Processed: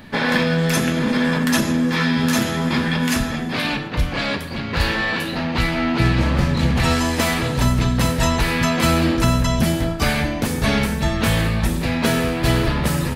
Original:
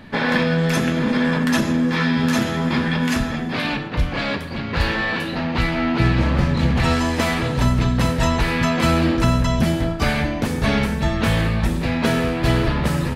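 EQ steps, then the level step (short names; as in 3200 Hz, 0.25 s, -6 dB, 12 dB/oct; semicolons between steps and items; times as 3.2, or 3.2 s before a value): high shelf 4600 Hz +6 dB; high shelf 11000 Hz +6 dB; 0.0 dB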